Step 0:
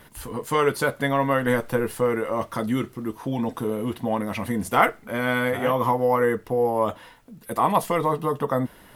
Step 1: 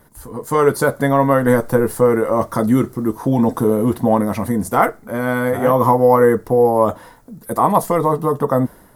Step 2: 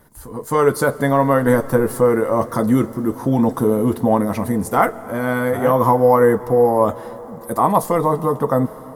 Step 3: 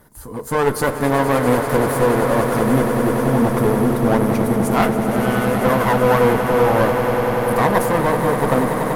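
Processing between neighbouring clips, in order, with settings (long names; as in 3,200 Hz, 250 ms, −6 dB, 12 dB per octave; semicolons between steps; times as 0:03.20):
parametric band 2,800 Hz −15 dB 1.1 octaves; automatic gain control gain up to 12 dB
comb and all-pass reverb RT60 4.8 s, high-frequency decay 0.9×, pre-delay 90 ms, DRR 17 dB; level −1 dB
asymmetric clip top −25.5 dBFS; echo that builds up and dies away 96 ms, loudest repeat 8, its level −11.5 dB; level +1 dB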